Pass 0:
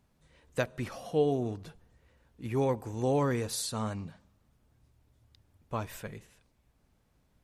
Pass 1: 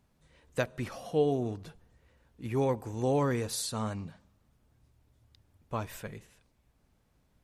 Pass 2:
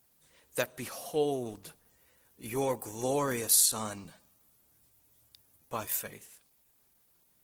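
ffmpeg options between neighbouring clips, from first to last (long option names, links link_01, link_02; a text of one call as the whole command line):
ffmpeg -i in.wav -af anull out.wav
ffmpeg -i in.wav -af "crystalizer=i=0.5:c=0,aemphasis=mode=production:type=bsi" -ar 48000 -c:a libopus -b:a 16k out.opus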